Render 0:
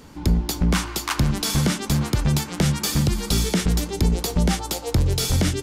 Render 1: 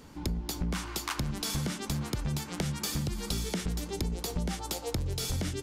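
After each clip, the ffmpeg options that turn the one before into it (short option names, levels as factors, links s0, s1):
-af "acompressor=threshold=0.0708:ratio=6,volume=0.501"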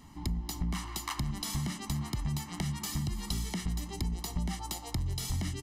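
-af "aecho=1:1:1:0.81,volume=0.562"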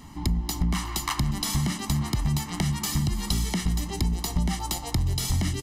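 -filter_complex "[0:a]asplit=6[s0][s1][s2][s3][s4][s5];[s1]adelay=360,afreqshift=-100,volume=0.0944[s6];[s2]adelay=720,afreqshift=-200,volume=0.0556[s7];[s3]adelay=1080,afreqshift=-300,volume=0.0327[s8];[s4]adelay=1440,afreqshift=-400,volume=0.0195[s9];[s5]adelay=1800,afreqshift=-500,volume=0.0115[s10];[s0][s6][s7][s8][s9][s10]amix=inputs=6:normalize=0,volume=2.51"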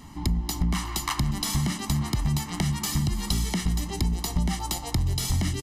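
-af "aresample=32000,aresample=44100"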